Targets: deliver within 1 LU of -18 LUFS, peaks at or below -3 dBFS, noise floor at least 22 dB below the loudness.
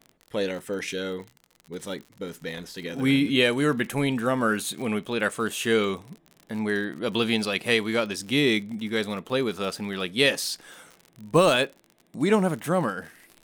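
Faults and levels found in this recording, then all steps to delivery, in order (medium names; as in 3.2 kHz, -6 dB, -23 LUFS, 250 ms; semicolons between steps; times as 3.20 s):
tick rate 51 per s; loudness -25.5 LUFS; peak level -7.0 dBFS; loudness target -18.0 LUFS
-> de-click; trim +7.5 dB; peak limiter -3 dBFS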